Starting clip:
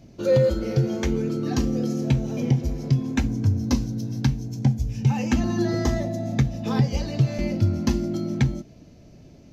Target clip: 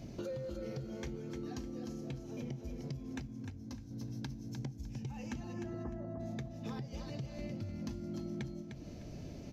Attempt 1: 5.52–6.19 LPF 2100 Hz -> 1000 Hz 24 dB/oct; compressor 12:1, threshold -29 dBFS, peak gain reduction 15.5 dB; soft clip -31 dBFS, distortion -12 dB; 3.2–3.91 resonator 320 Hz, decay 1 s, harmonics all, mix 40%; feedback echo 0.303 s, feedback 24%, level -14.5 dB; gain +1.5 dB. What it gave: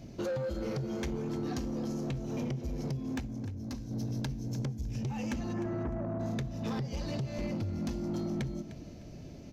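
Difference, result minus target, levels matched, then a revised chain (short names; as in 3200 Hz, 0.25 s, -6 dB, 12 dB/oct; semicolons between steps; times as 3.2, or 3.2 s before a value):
compressor: peak gain reduction -10.5 dB; echo-to-direct -7.5 dB
5.52–6.19 LPF 2100 Hz -> 1000 Hz 24 dB/oct; compressor 12:1, threshold -40.5 dBFS, peak gain reduction 26 dB; soft clip -31 dBFS, distortion -26 dB; 3.2–3.91 resonator 320 Hz, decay 1 s, harmonics all, mix 40%; feedback echo 0.303 s, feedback 24%, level -7 dB; gain +1.5 dB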